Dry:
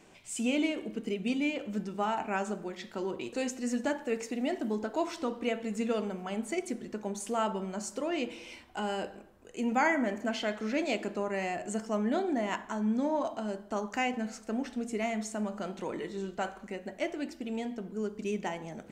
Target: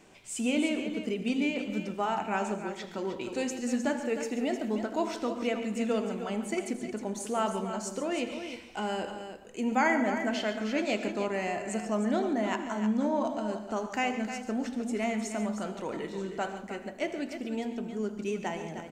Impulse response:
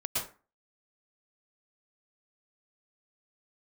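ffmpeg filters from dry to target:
-filter_complex "[0:a]aecho=1:1:80|141|309:0.141|0.211|0.335,asplit=2[a][b];[1:a]atrim=start_sample=2205[c];[b][c]afir=irnorm=-1:irlink=0,volume=-18.5dB[d];[a][d]amix=inputs=2:normalize=0"

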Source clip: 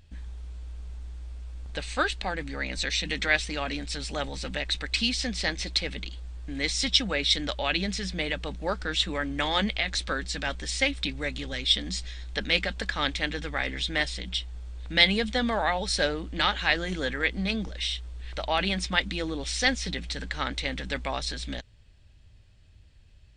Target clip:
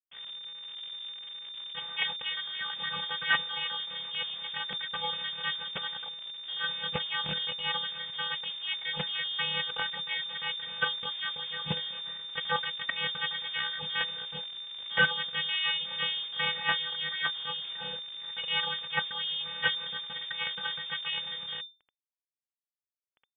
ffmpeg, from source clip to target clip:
-af "afftfilt=real='hypot(re,im)*cos(PI*b)':imag='0':win_size=512:overlap=0.75,aresample=11025,acrusher=bits=5:dc=4:mix=0:aa=0.000001,aresample=44100,aeval=exprs='sgn(val(0))*max(abs(val(0))-0.00282,0)':c=same,lowpass=f=3.1k:t=q:w=0.5098,lowpass=f=3.1k:t=q:w=0.6013,lowpass=f=3.1k:t=q:w=0.9,lowpass=f=3.1k:t=q:w=2.563,afreqshift=-3600,volume=1dB"

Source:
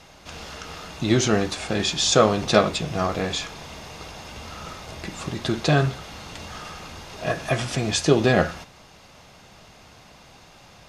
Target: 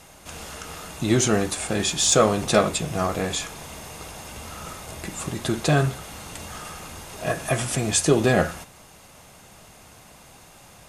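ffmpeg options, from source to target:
-af "asoftclip=type=tanh:threshold=-4.5dB,highshelf=f=6.8k:t=q:w=1.5:g=10.5"

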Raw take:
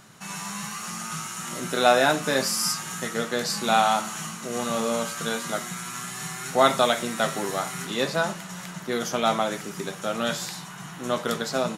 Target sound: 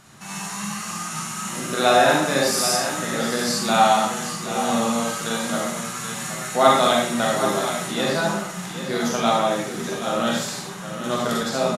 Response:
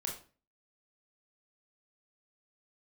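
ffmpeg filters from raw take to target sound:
-filter_complex "[0:a]aecho=1:1:778:0.316[a];[1:a]atrim=start_sample=2205,asetrate=25137,aresample=44100[b];[a][b]afir=irnorm=-1:irlink=0,volume=-1dB"

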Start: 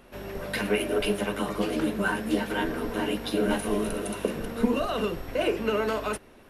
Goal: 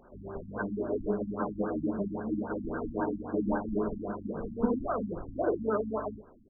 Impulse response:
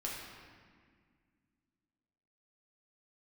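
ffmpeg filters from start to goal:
-af "equalizer=f=1.5k:t=o:w=2.8:g=5,aecho=1:1:50|69:0.316|0.126,afftfilt=real='re*lt(b*sr/1024,280*pow(1700/280,0.5+0.5*sin(2*PI*3.7*pts/sr)))':imag='im*lt(b*sr/1024,280*pow(1700/280,0.5+0.5*sin(2*PI*3.7*pts/sr)))':win_size=1024:overlap=0.75,volume=-4.5dB"

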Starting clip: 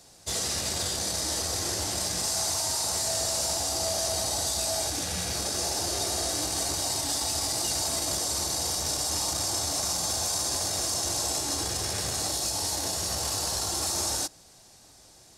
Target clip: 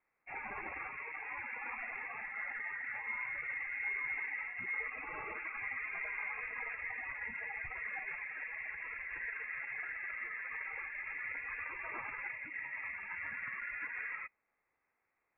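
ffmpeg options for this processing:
-af "afftdn=nr=20:nf=-37,highpass=f=920:p=1,tiltshelf=f=1.4k:g=-5,lowpass=f=2.4k:t=q:w=0.5098,lowpass=f=2.4k:t=q:w=0.6013,lowpass=f=2.4k:t=q:w=0.9,lowpass=f=2.4k:t=q:w=2.563,afreqshift=-2800,volume=3.5dB"

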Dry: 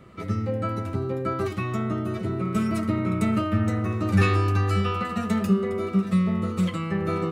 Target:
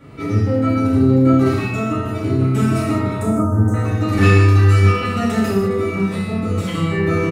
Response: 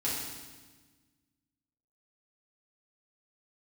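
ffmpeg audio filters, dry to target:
-filter_complex "[0:a]asoftclip=type=tanh:threshold=-14dB,asettb=1/sr,asplit=3[a][b][c];[a]atrim=end=3.214[d];[b]atrim=start=3.21:end=3.74,asetpts=PTS-STARTPTS,afade=t=in:d=0.004:c=qsin,afade=t=out:st=0.526:d=0.004:c=qsin,asuperstop=centerf=3000:order=8:qfactor=0.57[e];[c]atrim=start=3.736[f];[d][e]acrossfade=d=0.004:c1=hsin:c2=qsin[g];[g][f]acrossfade=d=0.004:c1=qsin:c2=hsin,asplit=2[h][i];[i]adelay=30,volume=-10.5dB[j];[h][j]amix=inputs=2:normalize=0[k];[1:a]atrim=start_sample=2205,afade=t=out:st=0.26:d=0.01,atrim=end_sample=11907[l];[k][l]afir=irnorm=-1:irlink=0,volume=3.5dB"

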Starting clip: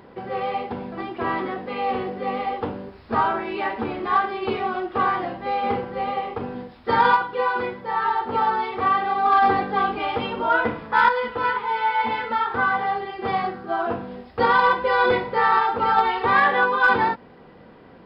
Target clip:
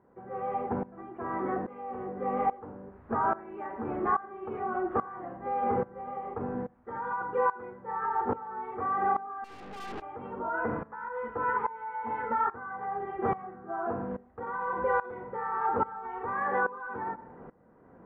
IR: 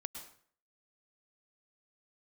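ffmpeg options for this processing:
-filter_complex "[0:a]lowpass=f=1.6k:w=0.5412,lowpass=f=1.6k:w=1.3066,alimiter=limit=-18dB:level=0:latency=1:release=85,asettb=1/sr,asplit=3[a][b][c];[a]atrim=end=9.444[d];[b]atrim=start=9.44:end=10.02,asetpts=PTS-STARTPTS,afade=t=in:d=0.004:c=qsin,afade=t=out:st=0.576:d=0.004:c=qsin,aeval=exprs='(tanh(70.8*val(0)+0.6)-tanh(0.6))/70.8':c=same[e];[c]atrim=start=10.016[f];[d][e]acrossfade=d=0.004:c1=hsin:c2=qsin[g];[g][f]acrossfade=d=0.004:c1=qsin:c2=hsin,asplit=2[h][i];[1:a]atrim=start_sample=2205,lowpass=4.3k[j];[i][j]afir=irnorm=-1:irlink=0,volume=-11.5dB[k];[h][k]amix=inputs=2:normalize=0,aeval=exprs='val(0)*pow(10,-19*if(lt(mod(-1.2*n/s,1),2*abs(-1.2)/1000),1-mod(-1.2*n/s,1)/(2*abs(-1.2)/1000),(mod(-1.2*n/s,1)-2*abs(-1.2)/1000)/(1-2*abs(-1.2)/1000))/20)':c=same"

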